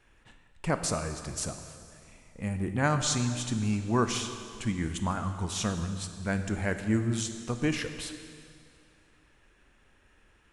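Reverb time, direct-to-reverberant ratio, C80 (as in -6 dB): 2.4 s, 7.5 dB, 9.5 dB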